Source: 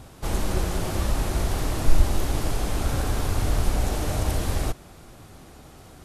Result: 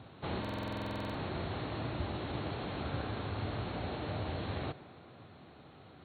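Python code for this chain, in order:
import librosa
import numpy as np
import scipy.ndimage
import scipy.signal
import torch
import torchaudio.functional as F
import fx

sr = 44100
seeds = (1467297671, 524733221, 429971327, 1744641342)

y = scipy.signal.sosfilt(scipy.signal.butter(4, 88.0, 'highpass', fs=sr, output='sos'), x)
y = fx.rider(y, sr, range_db=10, speed_s=0.5)
y = fx.brickwall_lowpass(y, sr, high_hz=4400.0)
y = fx.echo_tape(y, sr, ms=138, feedback_pct=81, wet_db=-18, lp_hz=3100.0, drive_db=15.0, wow_cents=37)
y = fx.buffer_glitch(y, sr, at_s=(0.4,), block=2048, repeats=15)
y = F.gain(torch.from_numpy(y), -8.0).numpy()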